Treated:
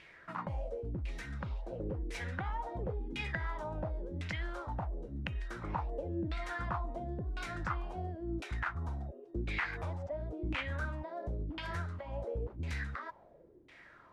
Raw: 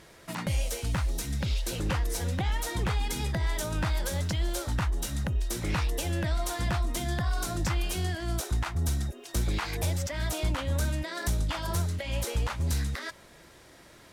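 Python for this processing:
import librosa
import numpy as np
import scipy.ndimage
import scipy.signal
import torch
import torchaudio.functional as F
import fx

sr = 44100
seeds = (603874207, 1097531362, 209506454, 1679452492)

y = F.preemphasis(torch.from_numpy(x), 0.8).numpy()
y = fx.filter_lfo_lowpass(y, sr, shape='saw_down', hz=0.95, low_hz=290.0, high_hz=2600.0, q=4.2)
y = y * librosa.db_to_amplitude(3.5)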